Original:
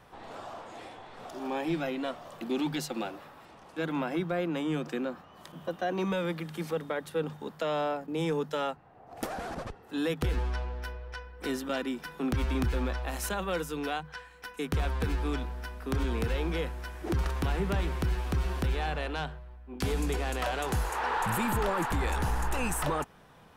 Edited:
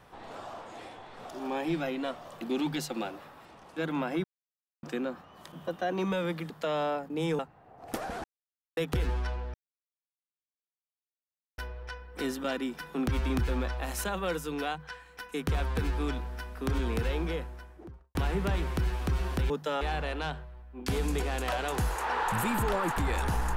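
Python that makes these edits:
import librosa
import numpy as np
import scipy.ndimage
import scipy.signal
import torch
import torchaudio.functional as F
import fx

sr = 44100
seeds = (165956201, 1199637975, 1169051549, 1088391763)

y = fx.studio_fade_out(x, sr, start_s=16.33, length_s=1.07)
y = fx.edit(y, sr, fx.silence(start_s=4.24, length_s=0.59),
    fx.cut(start_s=6.5, length_s=0.98),
    fx.move(start_s=8.37, length_s=0.31, to_s=18.75),
    fx.silence(start_s=9.53, length_s=0.53),
    fx.insert_silence(at_s=10.83, length_s=2.04), tone=tone)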